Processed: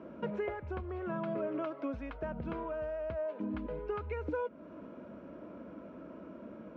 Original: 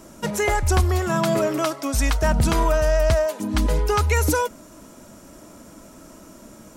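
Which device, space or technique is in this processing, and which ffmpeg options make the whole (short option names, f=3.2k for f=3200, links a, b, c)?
bass amplifier: -af "acompressor=threshold=-32dB:ratio=4,highpass=f=74:w=0.5412,highpass=f=74:w=1.3066,equalizer=f=87:t=q:w=4:g=-9,equalizer=f=130:t=q:w=4:g=-9,equalizer=f=510:t=q:w=4:g=4,equalizer=f=810:t=q:w=4:g=-7,equalizer=f=1.2k:t=q:w=4:g=-4,equalizer=f=1.9k:t=q:w=4:g=-9,lowpass=f=2.2k:w=0.5412,lowpass=f=2.2k:w=1.3066,volume=-2dB"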